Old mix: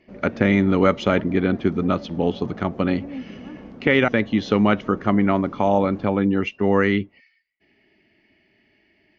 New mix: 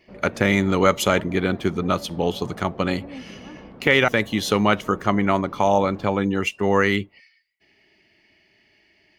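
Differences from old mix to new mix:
speech: remove Gaussian smoothing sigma 2.7 samples
master: add graphic EQ with 15 bands 250 Hz −6 dB, 1,000 Hz +3 dB, 6,300 Hz −11 dB

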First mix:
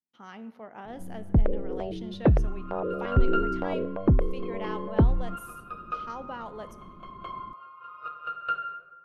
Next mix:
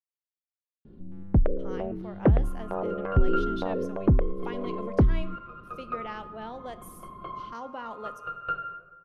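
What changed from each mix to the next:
speech: entry +1.45 s
second sound: add spectral tilt −3.5 dB per octave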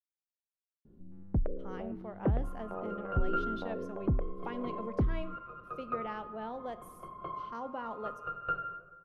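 first sound −9.0 dB
master: add high-shelf EQ 2,200 Hz −10.5 dB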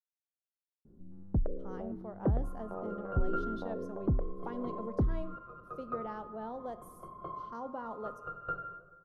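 master: add parametric band 2,500 Hz −14 dB 0.99 octaves

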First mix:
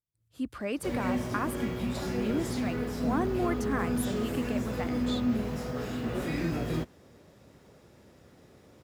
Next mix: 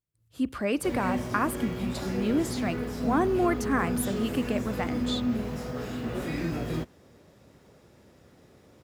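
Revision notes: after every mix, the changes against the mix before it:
speech +5.0 dB
reverb: on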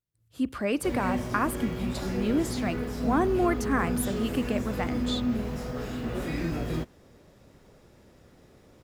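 background: remove high-pass filter 67 Hz

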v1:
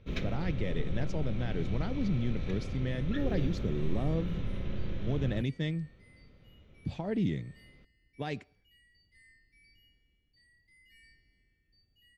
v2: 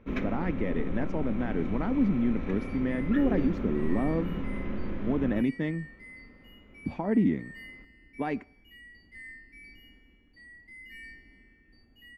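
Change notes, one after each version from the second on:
speech: add high-shelf EQ 4,600 Hz −6.5 dB
second sound +11.5 dB
master: add octave-band graphic EQ 125/250/1,000/2,000/4,000/8,000 Hz −9/+12/+9/+5/−10/−5 dB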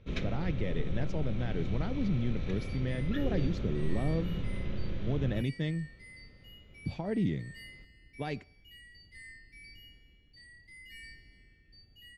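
first sound: add linear-phase brick-wall low-pass 11,000 Hz
master: add octave-band graphic EQ 125/250/1,000/2,000/4,000/8,000 Hz +9/−12/−9/−5/+10/+5 dB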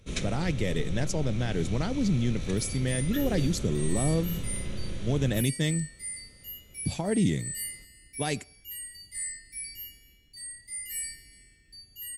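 speech +5.0 dB
master: remove high-frequency loss of the air 280 metres

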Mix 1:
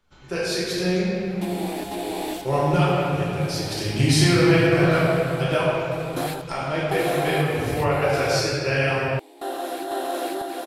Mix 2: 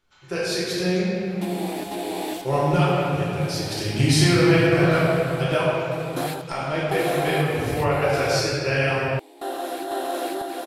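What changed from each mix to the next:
first sound: add high-pass filter 1,000 Hz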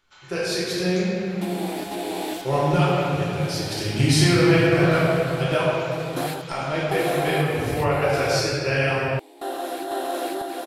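first sound +6.0 dB

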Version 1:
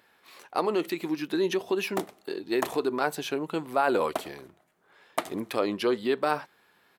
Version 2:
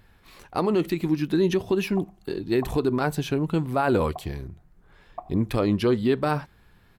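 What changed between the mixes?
background: add formant resonators in series a
master: remove high-pass filter 400 Hz 12 dB per octave

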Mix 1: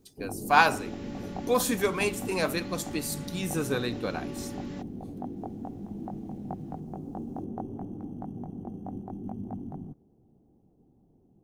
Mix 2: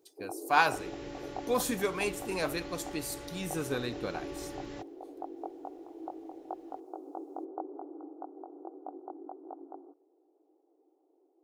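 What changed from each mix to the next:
speech −4.5 dB
first sound: add linear-phase brick-wall band-pass 290–1,500 Hz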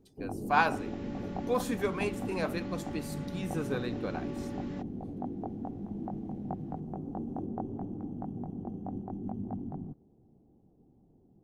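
first sound: remove linear-phase brick-wall band-pass 290–1,500 Hz
master: add high-shelf EQ 3,800 Hz −11 dB

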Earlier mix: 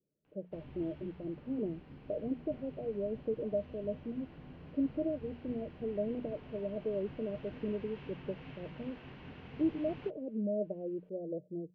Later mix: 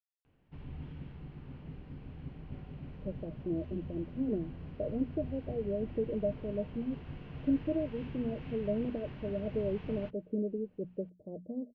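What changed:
speech: entry +2.70 s
master: add low-shelf EQ 150 Hz +12 dB

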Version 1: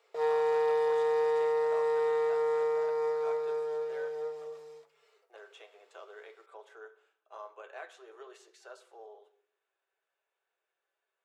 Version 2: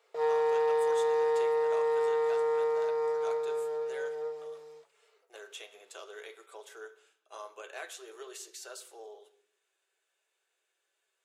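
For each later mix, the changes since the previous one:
speech: remove resonant band-pass 820 Hz, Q 0.8
background: send −9.0 dB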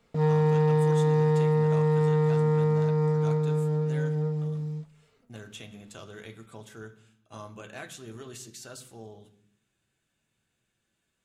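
master: remove elliptic high-pass filter 390 Hz, stop band 40 dB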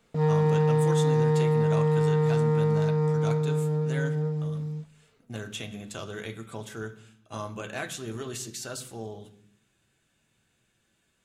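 speech +7.0 dB

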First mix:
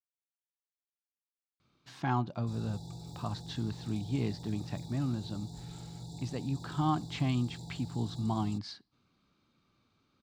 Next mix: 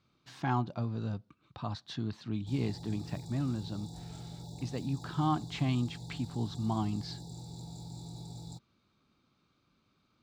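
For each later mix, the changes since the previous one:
speech: entry −1.60 s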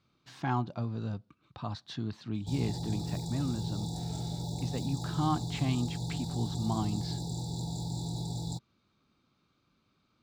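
background +9.0 dB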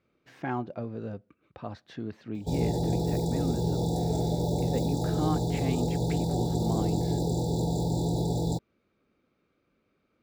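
background +11.0 dB
master: add octave-band graphic EQ 125/500/1,000/2,000/4,000/8,000 Hz −6/+10/−7/+6/−10/−7 dB

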